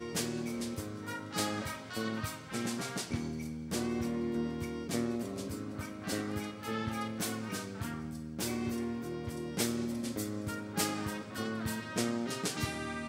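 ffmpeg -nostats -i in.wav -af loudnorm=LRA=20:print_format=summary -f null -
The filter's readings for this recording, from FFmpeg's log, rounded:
Input Integrated:    -36.4 LUFS
Input True Peak:     -16.9 dBTP
Input LRA:             1.3 LU
Input Threshold:     -46.4 LUFS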